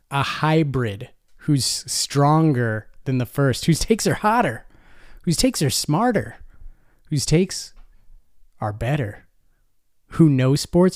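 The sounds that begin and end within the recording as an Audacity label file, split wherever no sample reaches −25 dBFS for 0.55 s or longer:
5.270000	6.270000	sound
7.120000	7.630000	sound
8.620000	9.110000	sound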